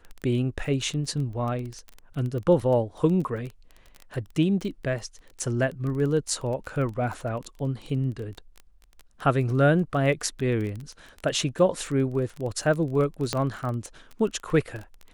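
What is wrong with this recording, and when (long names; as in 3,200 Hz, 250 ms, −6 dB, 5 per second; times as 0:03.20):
surface crackle 17 per second −31 dBFS
0:13.33: click −11 dBFS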